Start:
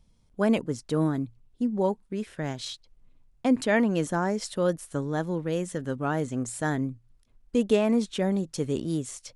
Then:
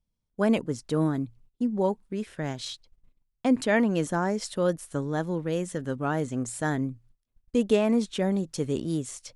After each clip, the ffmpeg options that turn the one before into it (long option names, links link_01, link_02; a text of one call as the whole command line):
ffmpeg -i in.wav -af "agate=range=-18dB:threshold=-53dB:ratio=16:detection=peak" out.wav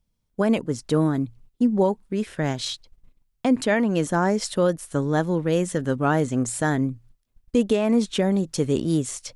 ffmpeg -i in.wav -af "alimiter=limit=-17.5dB:level=0:latency=1:release=428,volume=7dB" out.wav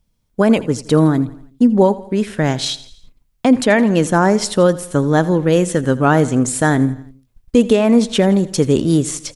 ffmpeg -i in.wav -af "aecho=1:1:83|166|249|332:0.126|0.0642|0.0327|0.0167,volume=8dB" out.wav